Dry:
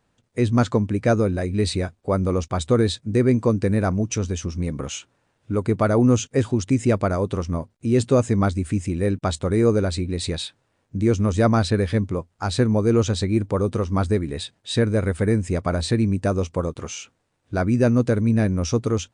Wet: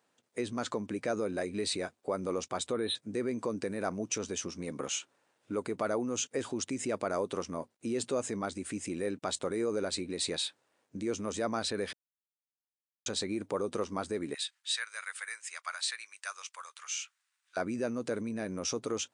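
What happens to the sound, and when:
2.72–2.96 spectral delete 4200–8600 Hz
11.93–13.06 mute
14.34–17.57 HPF 1300 Hz 24 dB/oct
whole clip: high shelf 6400 Hz +4.5 dB; limiter -17.5 dBFS; HPF 310 Hz 12 dB/oct; gain -4 dB

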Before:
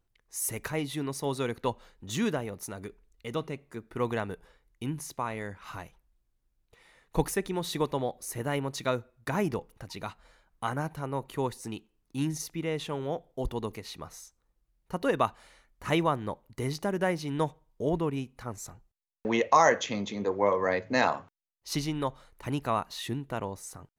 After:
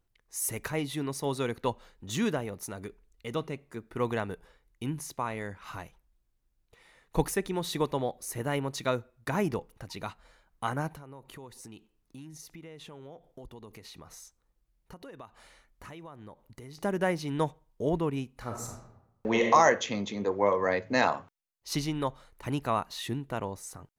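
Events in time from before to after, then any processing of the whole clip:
10.96–16.78 compressor, threshold -44 dBFS
18.32–19.48 reverb throw, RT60 0.89 s, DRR 1.5 dB

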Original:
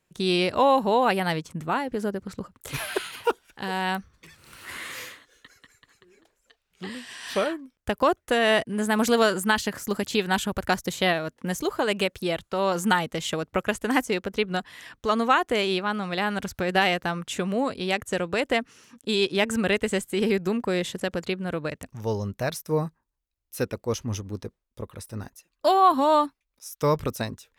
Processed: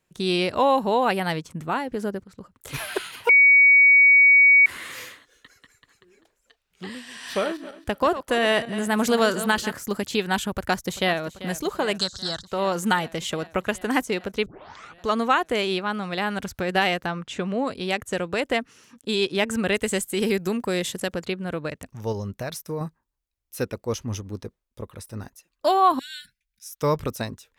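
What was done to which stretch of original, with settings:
2.24–2.77 fade in, from -14 dB
3.29–4.66 bleep 2250 Hz -10.5 dBFS
6.9–9.72 regenerating reverse delay 0.135 s, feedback 43%, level -12.5 dB
10.49–11.19 echo throw 0.39 s, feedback 80%, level -15.5 dB
11.98–12.47 EQ curve 140 Hz 0 dB, 460 Hz -11 dB, 1600 Hz +6 dB, 2400 Hz -22 dB, 4100 Hz +14 dB, 7500 Hz +10 dB, 12000 Hz -14 dB
14.46 tape start 0.54 s
17.06–17.67 air absorption 82 m
19.74–21.13 high shelf 5600 Hz +10 dB
22.12–22.81 compressor 4:1, threshold -26 dBFS
25.99–26.69 brick-wall FIR band-stop 230–1400 Hz

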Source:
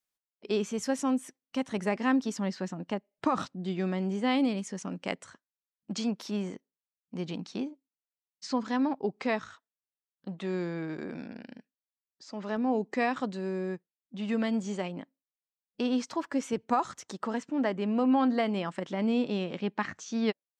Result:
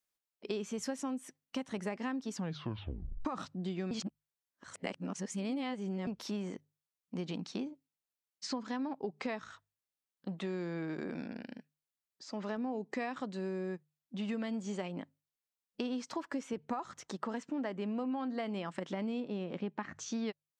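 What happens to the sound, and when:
2.35 tape stop 0.90 s
3.91–6.07 reverse
16.43–17.29 high shelf 5600 Hz -7.5 dB
19.2–19.99 high shelf 2200 Hz -9.5 dB
whole clip: notches 50/100/150 Hz; compressor, threshold -34 dBFS

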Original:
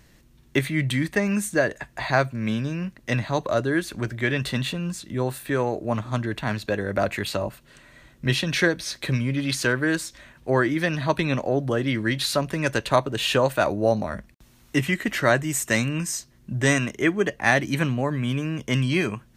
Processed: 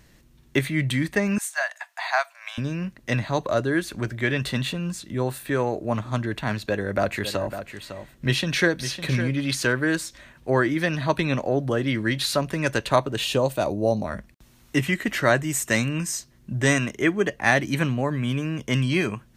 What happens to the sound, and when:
1.38–2.58 steep high-pass 670 Hz 72 dB/oct
6.58–9.33 echo 0.555 s -10.5 dB
13.24–14.05 bell 1600 Hz -11.5 dB 1.2 oct

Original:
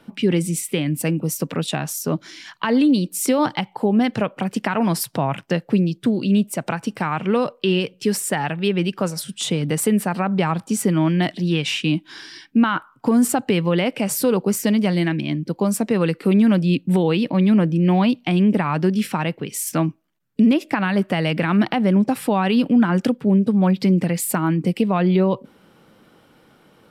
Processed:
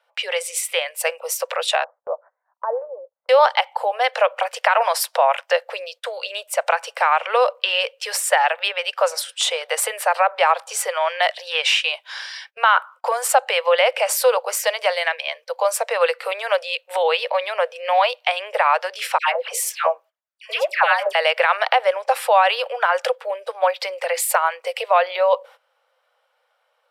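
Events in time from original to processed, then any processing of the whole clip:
1.84–3.29 Gaussian blur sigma 10 samples
19.18–21.15 dispersion lows, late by 0.118 s, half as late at 1200 Hz
whole clip: steep high-pass 500 Hz 96 dB/oct; gate -48 dBFS, range -18 dB; high shelf 5800 Hz -7.5 dB; gain +8 dB

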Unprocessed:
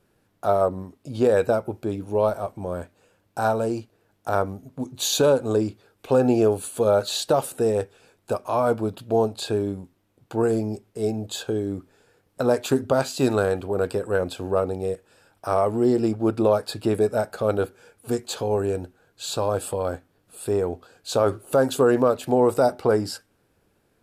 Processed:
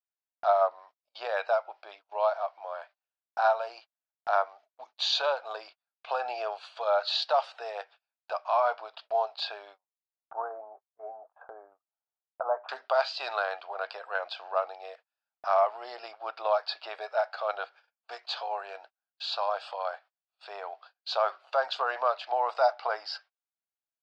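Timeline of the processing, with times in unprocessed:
9.78–12.69 steep low-pass 1300 Hz
whole clip: Chebyshev band-pass 660–4900 Hz, order 4; gate -51 dBFS, range -33 dB

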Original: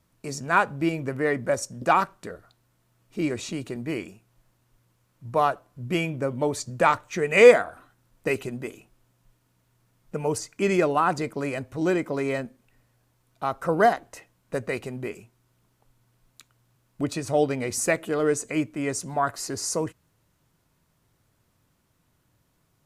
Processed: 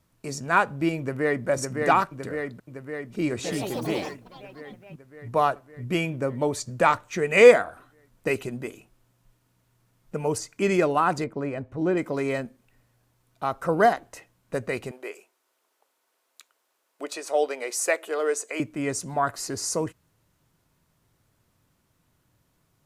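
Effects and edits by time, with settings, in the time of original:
0.99–1.47 echo throw 0.56 s, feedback 70%, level -3.5 dB
3.28–5.3 echoes that change speed 0.165 s, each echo +5 st, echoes 3
11.24–11.97 LPF 1100 Hz 6 dB/oct
14.91–18.6 HPF 410 Hz 24 dB/oct

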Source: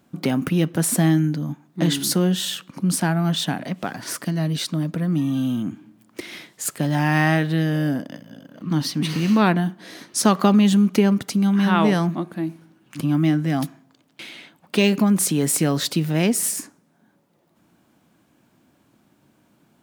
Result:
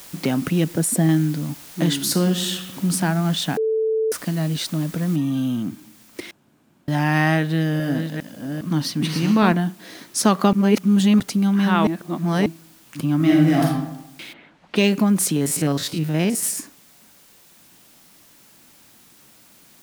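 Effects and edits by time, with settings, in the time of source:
0.64–1.09 formant sharpening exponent 1.5
2.04–2.9 reverb throw, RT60 1.2 s, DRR 6 dB
3.57–4.12 bleep 441 Hz -17.5 dBFS
5.16 noise floor step -42 dB -52 dB
6.31–6.88 room tone
7.39–9.52 reverse delay 0.407 s, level -6 dB
10.53–11.2 reverse
11.87–12.46 reverse
13.16–13.65 reverb throw, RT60 0.9 s, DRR -3.5 dB
14.32–14.75 LPF 1400 Hz -> 3400 Hz
15.36–16.43 stepped spectrum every 50 ms

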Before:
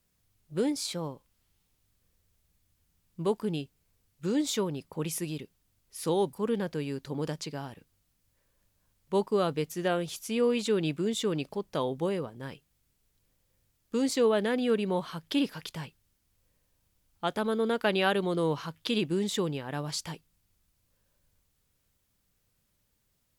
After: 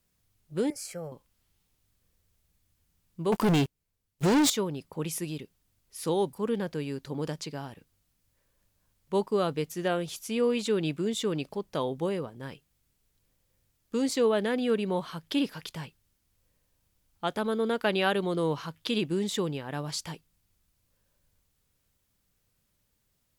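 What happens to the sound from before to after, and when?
0.7–1.12 fixed phaser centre 1000 Hz, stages 6
3.32–4.5 sample leveller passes 5

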